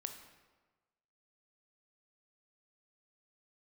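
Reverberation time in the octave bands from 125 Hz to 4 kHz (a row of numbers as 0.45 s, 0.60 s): 1.3 s, 1.2 s, 1.3 s, 1.3 s, 1.1 s, 0.90 s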